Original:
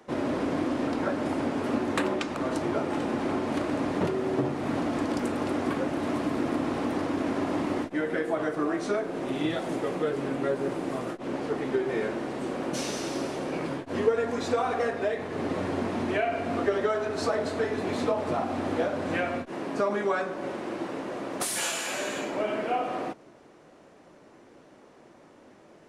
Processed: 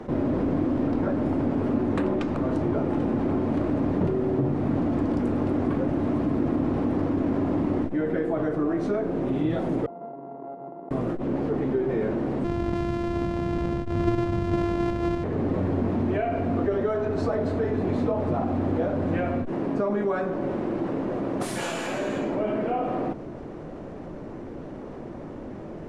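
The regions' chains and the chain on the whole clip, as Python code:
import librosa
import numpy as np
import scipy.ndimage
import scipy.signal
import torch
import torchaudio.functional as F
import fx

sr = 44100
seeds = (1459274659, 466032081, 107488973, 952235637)

y = fx.chain(x, sr, fx.sample_sort(block=64),
    fx.cheby1_bandpass(low_hz=140.0, high_hz=870.0, order=3),
    fx.differentiator(), at=(9.86, 10.91))
y = fx.chain(y, sr, fx.sample_sort(block=128),
    fx.air_absorb(metres=61.0), at=(12.44, 15.24))
y = fx.tilt_eq(y, sr, slope=-4.0)
y = fx.env_flatten(y, sr, amount_pct=50)
y = y * 10.0 ** (-7.5 / 20.0)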